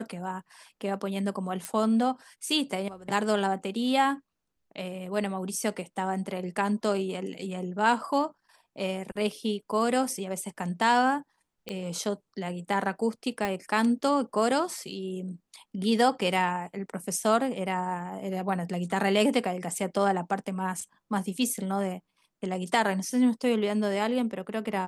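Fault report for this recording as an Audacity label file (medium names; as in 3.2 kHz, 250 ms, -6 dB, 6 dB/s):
1.650000	1.650000	pop -17 dBFS
11.690000	11.690000	pop -20 dBFS
13.450000	13.450000	pop -15 dBFS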